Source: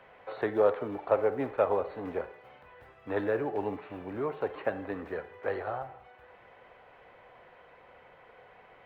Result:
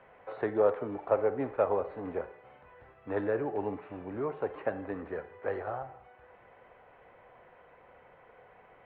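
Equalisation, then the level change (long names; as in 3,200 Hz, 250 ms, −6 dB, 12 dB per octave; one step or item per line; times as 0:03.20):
high-frequency loss of the air 380 metres
0.0 dB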